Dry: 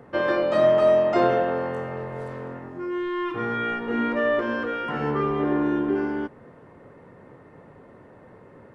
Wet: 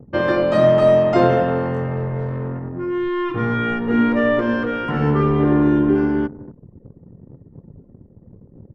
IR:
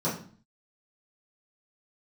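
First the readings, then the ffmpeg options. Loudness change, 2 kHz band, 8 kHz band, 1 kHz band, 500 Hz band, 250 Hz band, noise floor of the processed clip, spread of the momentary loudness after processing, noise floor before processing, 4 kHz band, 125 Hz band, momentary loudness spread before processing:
+5.5 dB, +3.5 dB, n/a, +3.5 dB, +4.5 dB, +8.5 dB, -50 dBFS, 11 LU, -50 dBFS, +4.0 dB, +14.0 dB, 15 LU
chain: -filter_complex "[0:a]bass=f=250:g=11,treble=f=4k:g=2,asplit=2[a][b];[b]adelay=244.9,volume=-17dB,highshelf=f=4k:g=-5.51[c];[a][c]amix=inputs=2:normalize=0,anlmdn=1.58,volume=3.5dB"

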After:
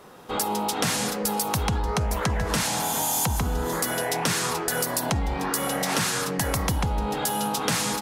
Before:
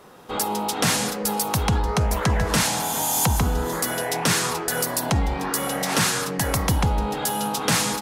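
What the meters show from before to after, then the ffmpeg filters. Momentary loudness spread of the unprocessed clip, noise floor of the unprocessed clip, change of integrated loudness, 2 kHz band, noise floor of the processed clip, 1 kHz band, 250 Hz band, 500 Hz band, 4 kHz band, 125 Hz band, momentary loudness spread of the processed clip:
4 LU, -30 dBFS, -2.5 dB, -2.5 dB, -30 dBFS, -2.0 dB, -2.5 dB, -2.0 dB, -3.0 dB, -4.0 dB, 3 LU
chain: -af "acompressor=threshold=-21dB:ratio=6"

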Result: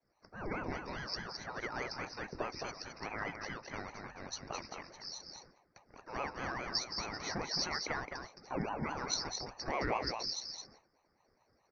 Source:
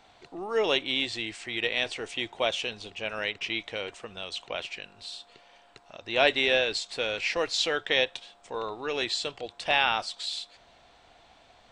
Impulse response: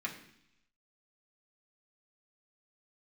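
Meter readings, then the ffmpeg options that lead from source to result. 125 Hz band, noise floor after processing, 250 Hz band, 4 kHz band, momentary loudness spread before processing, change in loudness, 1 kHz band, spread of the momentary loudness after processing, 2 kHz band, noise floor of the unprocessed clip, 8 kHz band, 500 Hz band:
+2.0 dB, -75 dBFS, -4.5 dB, -12.0 dB, 16 LU, -11.0 dB, -6.0 dB, 11 LU, -12.5 dB, -59 dBFS, -1.5 dB, -13.0 dB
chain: -af "afftfilt=real='real(if(between(b,1,1008),(2*floor((b-1)/48)+1)*48-b,b),0)':imag='imag(if(between(b,1,1008),(2*floor((b-1)/48)+1)*48-b,b),0)*if(between(b,1,1008),-1,1)':win_size=2048:overlap=0.75,asuperstop=centerf=3300:order=8:qfactor=0.68,bandreject=f=50:t=h:w=6,bandreject=f=100:t=h:w=6,bandreject=f=150:t=h:w=6,acompressor=threshold=-30dB:ratio=10,firequalizer=gain_entry='entry(110,0);entry(220,-9);entry(510,-19);entry(930,-11);entry(2800,1);entry(4100,15)':delay=0.05:min_phase=1,aecho=1:1:215:0.501,agate=range=-33dB:threshold=-51dB:ratio=3:detection=peak,aresample=11025,aresample=44100,acontrast=50,aeval=exprs='val(0)*sin(2*PI*540*n/s+540*0.7/4.8*sin(2*PI*4.8*n/s))':c=same,volume=4dB"

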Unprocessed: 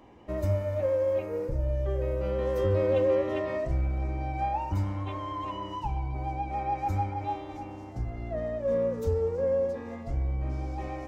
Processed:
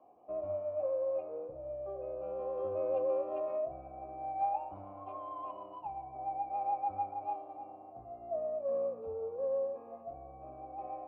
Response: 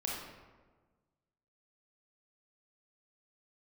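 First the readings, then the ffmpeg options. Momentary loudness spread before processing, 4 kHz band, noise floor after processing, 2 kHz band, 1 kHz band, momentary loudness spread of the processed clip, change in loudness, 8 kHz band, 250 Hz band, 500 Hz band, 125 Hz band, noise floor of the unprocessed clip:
9 LU, under -25 dB, -52 dBFS, under -20 dB, -3.5 dB, 13 LU, -7.5 dB, n/a, -16.0 dB, -6.5 dB, -27.0 dB, -41 dBFS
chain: -filter_complex "[0:a]acrossover=split=390|830[a][b][c];[c]adynamicsmooth=sensitivity=1.5:basefreq=1.1k[d];[a][b][d]amix=inputs=3:normalize=0,asplit=3[e][f][g];[e]bandpass=f=730:t=q:w=8,volume=0dB[h];[f]bandpass=f=1.09k:t=q:w=8,volume=-6dB[i];[g]bandpass=f=2.44k:t=q:w=8,volume=-9dB[j];[h][i][j]amix=inputs=3:normalize=0,volume=5.5dB"

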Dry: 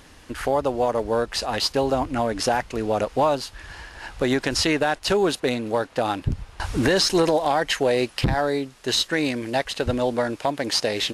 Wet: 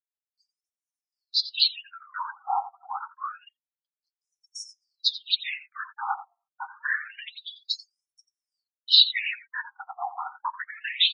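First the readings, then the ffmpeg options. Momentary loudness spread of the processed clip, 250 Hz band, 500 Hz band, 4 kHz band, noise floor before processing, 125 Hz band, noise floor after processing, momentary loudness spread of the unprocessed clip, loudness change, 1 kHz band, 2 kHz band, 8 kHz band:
19 LU, under -40 dB, under -30 dB, +2.5 dB, -49 dBFS, under -40 dB, under -85 dBFS, 8 LU, -3.0 dB, -8.0 dB, -4.5 dB, -19.5 dB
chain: -filter_complex "[0:a]afftfilt=real='hypot(re,im)*cos(2*PI*random(0))':imag='hypot(re,im)*sin(2*PI*random(1))':win_size=512:overlap=0.75,afftdn=nr=32:nf=-38,highpass=f=100:p=1,highshelf=f=5.3k:t=q:w=3:g=-8.5,asplit=2[a][b];[b]adelay=87.46,volume=-14dB,highshelf=f=4k:g=-1.97[c];[a][c]amix=inputs=2:normalize=0,afftfilt=real='re*(1-between(b*sr/4096,180,690))':imag='im*(1-between(b*sr/4096,180,690))':win_size=4096:overlap=0.75,agate=range=-40dB:threshold=-43dB:ratio=16:detection=peak,equalizer=f=750:w=0.47:g=-3,aecho=1:1:7.5:0.41,afftfilt=real='re*between(b*sr/1024,960*pow(7700/960,0.5+0.5*sin(2*PI*0.27*pts/sr))/1.41,960*pow(7700/960,0.5+0.5*sin(2*PI*0.27*pts/sr))*1.41)':imag='im*between(b*sr/1024,960*pow(7700/960,0.5+0.5*sin(2*PI*0.27*pts/sr))/1.41,960*pow(7700/960,0.5+0.5*sin(2*PI*0.27*pts/sr))*1.41)':win_size=1024:overlap=0.75,volume=7.5dB"

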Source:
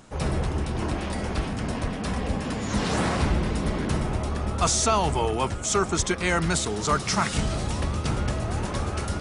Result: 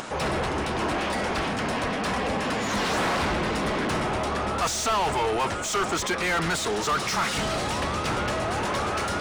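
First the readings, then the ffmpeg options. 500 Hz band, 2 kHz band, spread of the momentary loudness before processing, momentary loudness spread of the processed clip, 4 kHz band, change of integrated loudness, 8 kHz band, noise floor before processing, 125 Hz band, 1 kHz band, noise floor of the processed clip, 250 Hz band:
+1.5 dB, +4.5 dB, 6 LU, 3 LU, +2.5 dB, 0.0 dB, -3.0 dB, -32 dBFS, -6.5 dB, +3.0 dB, -29 dBFS, -2.0 dB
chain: -filter_complex "[0:a]asplit=2[a][b];[b]highpass=f=720:p=1,volume=26dB,asoftclip=type=tanh:threshold=-10dB[c];[a][c]amix=inputs=2:normalize=0,lowpass=f=3.3k:p=1,volume=-6dB,acompressor=mode=upward:threshold=-22dB:ratio=2.5,volume=-7dB"

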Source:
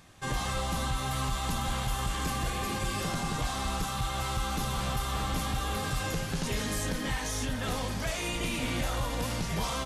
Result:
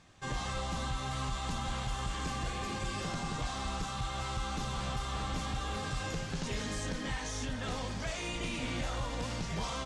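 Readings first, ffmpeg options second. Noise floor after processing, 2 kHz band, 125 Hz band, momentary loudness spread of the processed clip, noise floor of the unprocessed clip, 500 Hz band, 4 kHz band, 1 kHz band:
-39 dBFS, -4.5 dB, -4.5 dB, 1 LU, -34 dBFS, -4.5 dB, -4.5 dB, -4.5 dB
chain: -af "lowpass=f=8.1k:w=0.5412,lowpass=f=8.1k:w=1.3066,volume=-4.5dB"

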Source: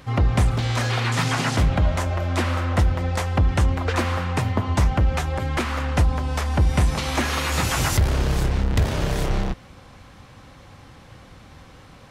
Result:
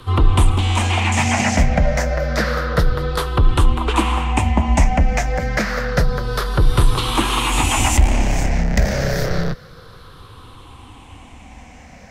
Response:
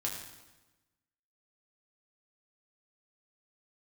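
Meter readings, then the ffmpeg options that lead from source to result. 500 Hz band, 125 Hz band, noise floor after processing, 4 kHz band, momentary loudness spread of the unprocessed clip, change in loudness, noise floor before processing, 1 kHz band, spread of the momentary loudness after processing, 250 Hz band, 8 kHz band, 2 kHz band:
+5.5 dB, +2.0 dB, -42 dBFS, +5.0 dB, 5 LU, +4.0 dB, -47 dBFS, +5.5 dB, 5 LU, +4.5 dB, +6.5 dB, +5.0 dB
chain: -af "afftfilt=real='re*pow(10,12/40*sin(2*PI*(0.63*log(max(b,1)*sr/1024/100)/log(2)-(-0.29)*(pts-256)/sr)))':imag='im*pow(10,12/40*sin(2*PI*(0.63*log(max(b,1)*sr/1024/100)/log(2)-(-0.29)*(pts-256)/sr)))':win_size=1024:overlap=0.75,afreqshift=-26,volume=3.5dB"

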